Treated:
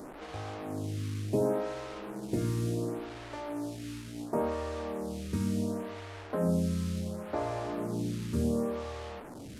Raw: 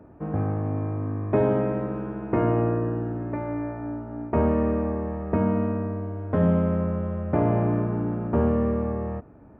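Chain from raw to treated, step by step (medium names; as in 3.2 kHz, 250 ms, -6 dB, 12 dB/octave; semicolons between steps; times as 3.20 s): one-bit delta coder 64 kbps, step -31 dBFS; lamp-driven phase shifter 0.7 Hz; trim -5.5 dB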